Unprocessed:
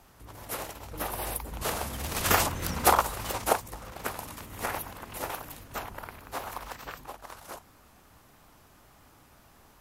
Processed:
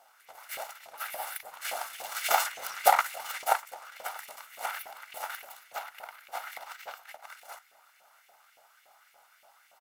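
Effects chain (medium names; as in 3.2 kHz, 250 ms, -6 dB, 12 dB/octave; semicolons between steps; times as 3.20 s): comb filter that takes the minimum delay 1.4 ms; LFO high-pass saw up 3.5 Hz 560–2400 Hz; echo from a far wall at 110 m, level -23 dB; trim -3 dB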